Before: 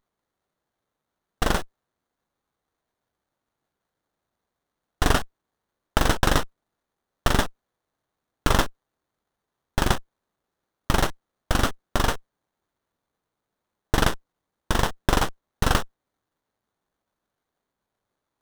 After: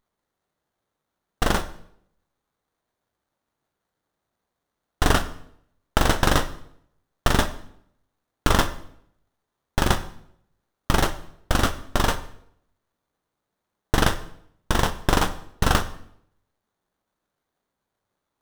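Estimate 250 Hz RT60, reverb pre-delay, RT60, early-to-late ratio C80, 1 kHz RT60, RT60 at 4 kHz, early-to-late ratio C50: 0.80 s, 15 ms, 0.70 s, 17.0 dB, 0.65 s, 0.60 s, 14.0 dB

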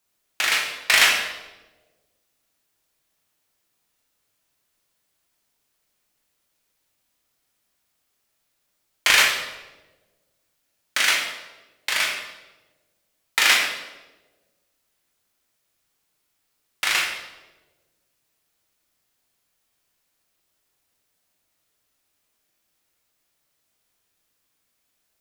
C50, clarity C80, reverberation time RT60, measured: 3.5 dB, 6.0 dB, 1.2 s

